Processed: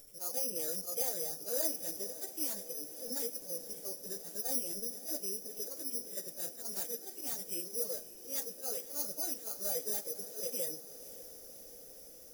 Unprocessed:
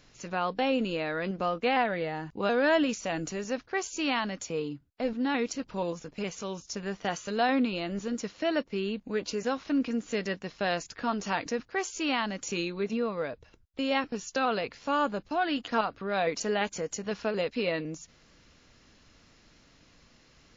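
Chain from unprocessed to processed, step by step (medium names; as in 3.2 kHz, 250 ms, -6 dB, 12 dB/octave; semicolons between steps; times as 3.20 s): spectrogram pixelated in time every 50 ms; feedback comb 780 Hz, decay 0.38 s, mix 40%; dynamic bell 1.9 kHz, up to +4 dB, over -50 dBFS, Q 0.84; reverberation RT60 0.90 s, pre-delay 6 ms, DRR 15 dB; slow attack 181 ms; careless resampling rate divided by 8×, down filtered, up zero stuff; ten-band graphic EQ 125 Hz -7 dB, 250 Hz -4 dB, 500 Hz +9 dB, 1 kHz -11 dB, 2 kHz -6 dB, 4 kHz -8 dB; plain phase-vocoder stretch 0.6×; compression 1.5:1, threshold -56 dBFS, peak gain reduction 13.5 dB; echo that smears into a reverb 552 ms, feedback 76%, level -15 dB; trim +4 dB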